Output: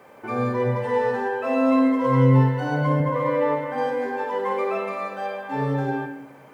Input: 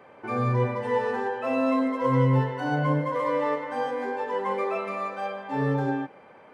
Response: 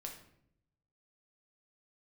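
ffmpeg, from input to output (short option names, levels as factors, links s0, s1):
-filter_complex "[0:a]asettb=1/sr,asplit=3[s0][s1][s2];[s0]atrim=end=3.004[s3];[s1]atrim=start=3:end=3.78,asetpts=PTS-STARTPTS,afade=t=in:d=0.004:c=qsin,afade=t=out:st=0.776:d=0.004:c=qsin,bass=f=250:g=6,treble=f=4000:g=-10[s4];[s2]atrim=start=3.776[s5];[s3][s4]acrossfade=d=0.004:c1=hsin:c2=qsin[s6];[s6][s5]acrossfade=d=0.004:c1=qsin:c2=hsin,acrusher=bits=10:mix=0:aa=0.000001,asplit=2[s7][s8];[1:a]atrim=start_sample=2205,asetrate=39690,aresample=44100,adelay=53[s9];[s8][s9]afir=irnorm=-1:irlink=0,volume=0.596[s10];[s7][s10]amix=inputs=2:normalize=0,volume=1.19"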